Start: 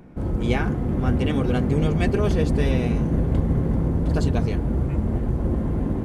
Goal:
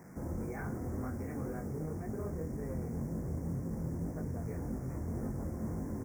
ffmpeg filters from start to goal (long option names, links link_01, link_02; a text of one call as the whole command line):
ffmpeg -i in.wav -filter_complex "[0:a]highpass=71,bandreject=frequency=50:width_type=h:width=6,bandreject=frequency=100:width_type=h:width=6,bandreject=frequency=150:width_type=h:width=6,bandreject=frequency=200:width_type=h:width=6,bandreject=frequency=250:width_type=h:width=6,bandreject=frequency=300:width_type=h:width=6,bandreject=frequency=350:width_type=h:width=6,bandreject=frequency=400:width_type=h:width=6,alimiter=level_in=2dB:limit=-24dB:level=0:latency=1:release=139,volume=-2dB,flanger=delay=19:depth=7:speed=1.9,asettb=1/sr,asplit=3[link_01][link_02][link_03];[link_01]atrim=end=1.664[link_04];[link_02]atrim=start=1.66:end=4.42,asetpts=PTS-STARTPTS,afade=type=in:duration=0.004:curve=qsin,afade=type=out:start_time=2.756:duration=0.004:curve=qsin,adynamicsmooth=sensitivity=3.5:basefreq=1000[link_05];[link_03]atrim=start=4.416[link_06];[link_04][link_05]acrossfade=duration=0.004:curve1=hsin:curve2=qsin[link_07];[link_07][link_06]acrossfade=duration=0.004:curve1=qsin:curve2=hsin,acrusher=bits=8:mix=0:aa=0.000001,asuperstop=centerf=3400:order=8:qfactor=1,asplit=2[link_08][link_09];[link_09]adelay=23,volume=-11.5dB[link_10];[link_08][link_10]amix=inputs=2:normalize=0,volume=-2dB" out.wav